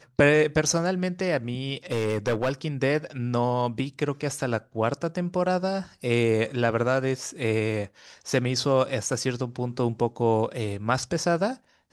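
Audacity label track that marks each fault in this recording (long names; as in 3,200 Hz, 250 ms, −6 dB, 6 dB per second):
1.920000	2.670000	clipping −20 dBFS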